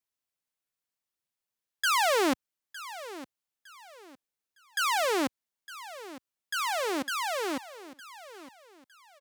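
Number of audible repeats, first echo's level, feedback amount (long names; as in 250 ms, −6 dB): 2, −16.0 dB, 31%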